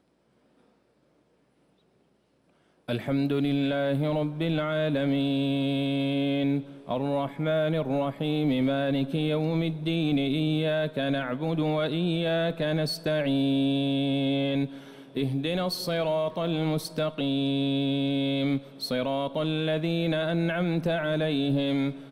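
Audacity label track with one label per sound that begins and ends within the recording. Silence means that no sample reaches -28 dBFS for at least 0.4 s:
2.890000	14.660000	sound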